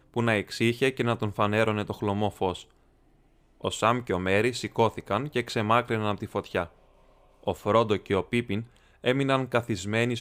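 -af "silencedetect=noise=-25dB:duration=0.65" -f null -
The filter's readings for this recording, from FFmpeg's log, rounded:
silence_start: 2.51
silence_end: 3.65 | silence_duration: 1.14
silence_start: 6.64
silence_end: 7.48 | silence_duration: 0.84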